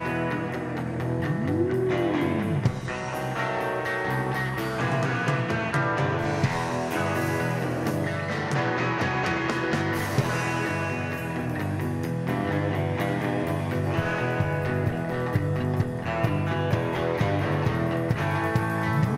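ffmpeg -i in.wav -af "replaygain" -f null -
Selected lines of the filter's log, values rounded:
track_gain = +9.7 dB
track_peak = 0.230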